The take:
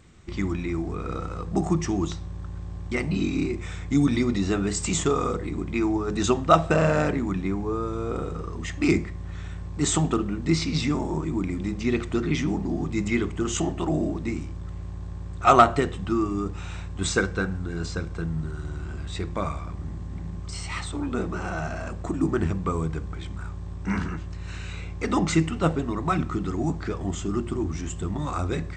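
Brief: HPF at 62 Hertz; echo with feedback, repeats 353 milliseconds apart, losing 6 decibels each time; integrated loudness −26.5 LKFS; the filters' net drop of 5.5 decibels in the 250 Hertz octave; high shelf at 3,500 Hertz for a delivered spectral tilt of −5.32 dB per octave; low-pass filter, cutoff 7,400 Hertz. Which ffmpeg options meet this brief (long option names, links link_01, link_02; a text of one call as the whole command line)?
ffmpeg -i in.wav -af "highpass=62,lowpass=7400,equalizer=frequency=250:width_type=o:gain=-8,highshelf=frequency=3500:gain=-4.5,aecho=1:1:353|706|1059|1412|1765|2118:0.501|0.251|0.125|0.0626|0.0313|0.0157,volume=2dB" out.wav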